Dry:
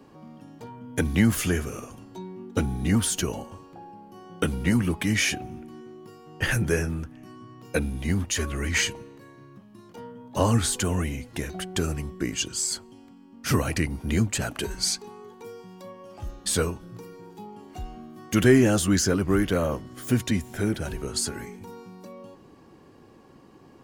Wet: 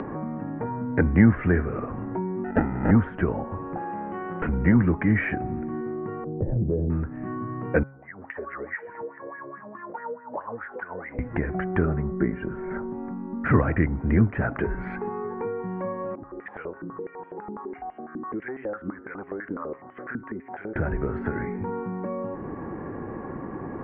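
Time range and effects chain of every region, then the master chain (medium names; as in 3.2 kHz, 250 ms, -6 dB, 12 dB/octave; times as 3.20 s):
2.44–2.91 s: frequency weighting D + sample-rate reducer 1.1 kHz
3.77–4.49 s: frequency weighting D + upward compressor, threshold -36 dBFS + valve stage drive 32 dB, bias 0.7
6.24–6.90 s: inverse Chebyshev low-pass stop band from 1.2 kHz + compression 2:1, threshold -28 dBFS
7.83–11.19 s: compression 4:1, threshold -35 dBFS + wah-wah 4.7 Hz 480–1900 Hz, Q 4.9
11.85–13.46 s: low-pass 1.6 kHz + comb 5.1 ms, depth 58%
16.15–20.76 s: band-stop 640 Hz, Q 7.1 + compression 2:1, threshold -42 dBFS + step-sequenced band-pass 12 Hz 280–3100 Hz
whole clip: steep low-pass 2 kHz 48 dB/octave; de-hum 135.8 Hz, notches 11; upward compressor, threshold -25 dBFS; trim +4 dB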